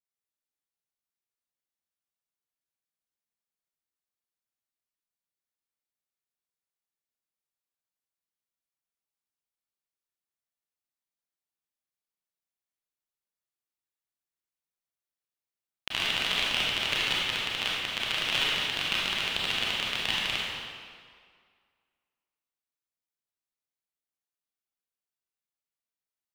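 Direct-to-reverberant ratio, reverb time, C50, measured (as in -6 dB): -6.0 dB, 2.0 s, -3.0 dB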